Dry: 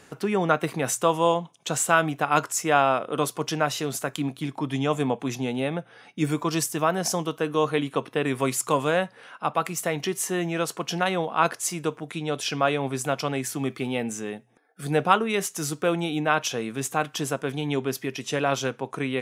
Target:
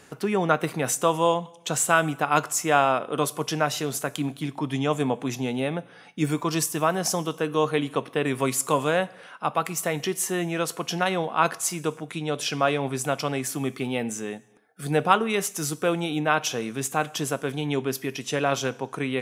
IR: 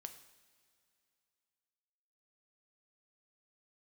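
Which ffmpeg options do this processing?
-filter_complex "[0:a]asplit=2[link_01][link_02];[1:a]atrim=start_sample=2205,afade=type=out:start_time=0.39:duration=0.01,atrim=end_sample=17640,highshelf=frequency=7200:gain=8.5[link_03];[link_02][link_03]afir=irnorm=-1:irlink=0,volume=-3.5dB[link_04];[link_01][link_04]amix=inputs=2:normalize=0,volume=-2.5dB"

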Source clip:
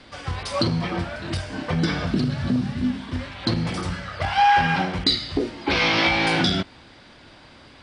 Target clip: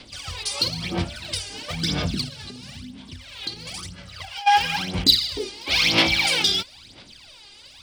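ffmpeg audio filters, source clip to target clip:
ffmpeg -i in.wav -filter_complex "[0:a]aphaser=in_gain=1:out_gain=1:delay=2.5:decay=0.75:speed=1:type=sinusoidal,asplit=3[link_01][link_02][link_03];[link_01]afade=type=out:start_time=2.28:duration=0.02[link_04];[link_02]acompressor=threshold=-27dB:ratio=8,afade=type=in:start_time=2.28:duration=0.02,afade=type=out:start_time=4.46:duration=0.02[link_05];[link_03]afade=type=in:start_time=4.46:duration=0.02[link_06];[link_04][link_05][link_06]amix=inputs=3:normalize=0,aexciter=amount=4.1:drive=6.5:freq=2400,volume=-10dB" out.wav

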